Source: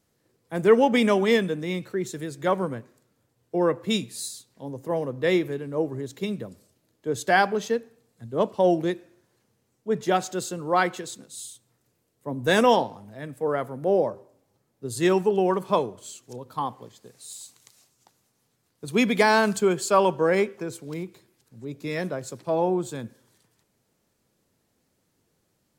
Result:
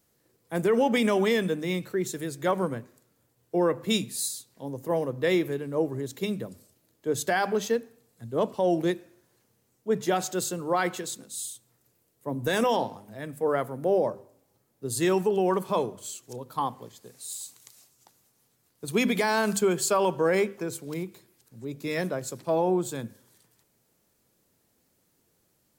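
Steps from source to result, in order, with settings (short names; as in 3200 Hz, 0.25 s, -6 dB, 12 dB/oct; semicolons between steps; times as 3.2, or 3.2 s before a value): high shelf 11000 Hz +11.5 dB; notches 50/100/150/200/250 Hz; limiter -15 dBFS, peak gain reduction 9 dB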